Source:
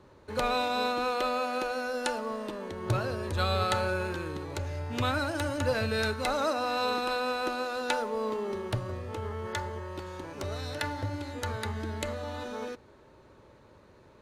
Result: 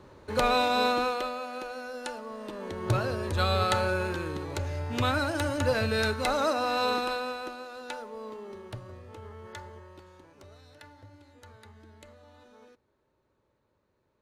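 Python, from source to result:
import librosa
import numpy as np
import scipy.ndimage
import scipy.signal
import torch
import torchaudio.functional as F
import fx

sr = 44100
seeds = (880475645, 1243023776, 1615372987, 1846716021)

y = fx.gain(x, sr, db=fx.line((0.96, 4.0), (1.36, -6.0), (2.3, -6.0), (2.72, 2.0), (6.96, 2.0), (7.6, -9.0), (9.74, -9.0), (10.64, -18.0)))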